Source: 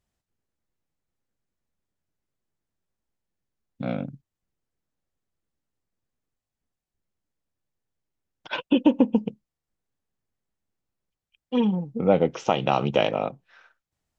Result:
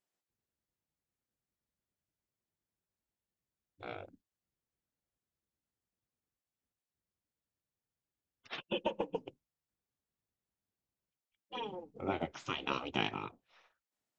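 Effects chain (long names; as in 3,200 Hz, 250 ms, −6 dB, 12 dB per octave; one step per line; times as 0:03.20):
gate on every frequency bin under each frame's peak −10 dB weak
level −6.5 dB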